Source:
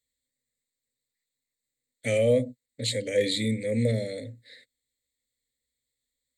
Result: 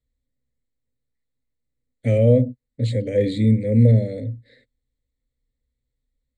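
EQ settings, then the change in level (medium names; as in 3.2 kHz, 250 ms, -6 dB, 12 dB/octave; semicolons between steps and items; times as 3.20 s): tilt EQ -4.5 dB/octave; 0.0 dB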